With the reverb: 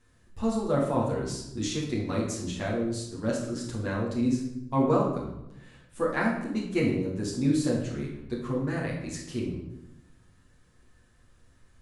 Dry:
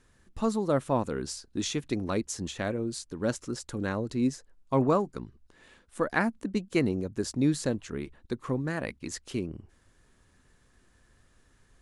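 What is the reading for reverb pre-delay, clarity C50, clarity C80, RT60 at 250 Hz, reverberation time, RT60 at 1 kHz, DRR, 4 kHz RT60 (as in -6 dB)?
8 ms, 3.5 dB, 6.5 dB, 1.1 s, 0.90 s, 0.85 s, -5.0 dB, 0.65 s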